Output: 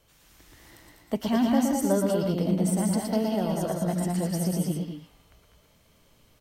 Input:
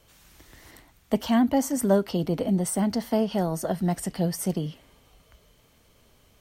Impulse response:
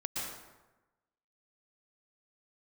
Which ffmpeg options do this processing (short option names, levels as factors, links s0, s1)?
-filter_complex "[0:a]aecho=1:1:196|213:0.531|0.473[s0];[1:a]atrim=start_sample=2205,afade=t=out:st=0.17:d=0.01,atrim=end_sample=7938[s1];[s0][s1]afir=irnorm=-1:irlink=0,volume=0.794"